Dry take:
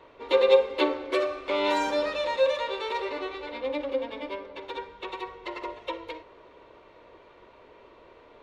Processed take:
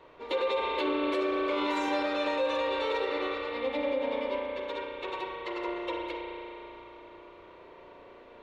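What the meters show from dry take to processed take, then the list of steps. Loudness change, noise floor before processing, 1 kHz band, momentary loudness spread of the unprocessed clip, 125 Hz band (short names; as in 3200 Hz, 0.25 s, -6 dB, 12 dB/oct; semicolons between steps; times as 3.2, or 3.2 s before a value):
-3.0 dB, -54 dBFS, -1.0 dB, 17 LU, n/a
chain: spring tank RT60 3.2 s, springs 34 ms, chirp 30 ms, DRR -1.5 dB; limiter -18.5 dBFS, peak gain reduction 10 dB; gain -2.5 dB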